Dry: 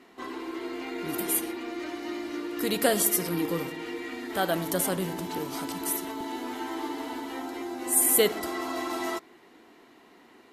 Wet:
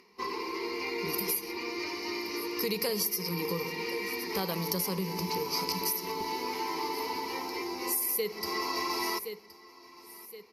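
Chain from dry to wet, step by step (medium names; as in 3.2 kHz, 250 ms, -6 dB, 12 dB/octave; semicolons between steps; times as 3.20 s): gate -44 dBFS, range -28 dB; rippled EQ curve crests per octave 0.83, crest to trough 16 dB; upward compressor, threshold -45 dBFS; feedback delay 1070 ms, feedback 41%, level -23 dB; compression 10:1, threshold -27 dBFS, peak gain reduction 16.5 dB; peaking EQ 4.5 kHz +12 dB 0.69 oct; trim -1.5 dB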